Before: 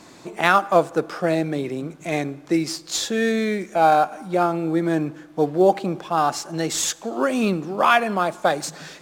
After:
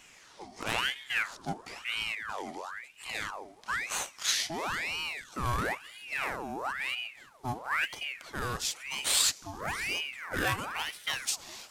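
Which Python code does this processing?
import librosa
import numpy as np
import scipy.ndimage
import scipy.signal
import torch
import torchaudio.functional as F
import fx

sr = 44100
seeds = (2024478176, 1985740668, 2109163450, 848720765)

p1 = fx.speed_glide(x, sr, from_pct=64, to_pct=90)
p2 = fx.low_shelf(p1, sr, hz=440.0, db=7.5)
p3 = 10.0 ** (-15.0 / 20.0) * np.tanh(p2 / 10.0 ** (-15.0 / 20.0))
p4 = p2 + (p3 * 10.0 ** (-4.0 / 20.0))
p5 = librosa.effects.preemphasis(p4, coef=0.9, zi=[0.0])
y = fx.ring_lfo(p5, sr, carrier_hz=1600.0, swing_pct=70, hz=1.0)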